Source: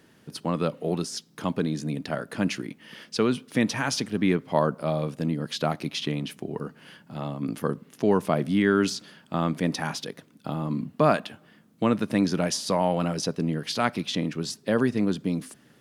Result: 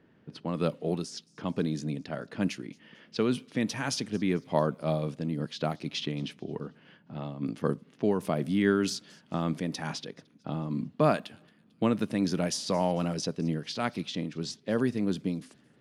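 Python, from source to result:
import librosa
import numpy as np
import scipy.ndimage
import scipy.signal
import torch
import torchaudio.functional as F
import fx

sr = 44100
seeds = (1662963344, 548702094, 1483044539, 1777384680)

y = fx.env_lowpass(x, sr, base_hz=2000.0, full_db=-21.5)
y = fx.peak_eq(y, sr, hz=1200.0, db=-3.5, octaves=1.7)
y = fx.echo_wet_highpass(y, sr, ms=223, feedback_pct=45, hz=3500.0, wet_db=-22.0)
y = fx.am_noise(y, sr, seeds[0], hz=5.7, depth_pct=60)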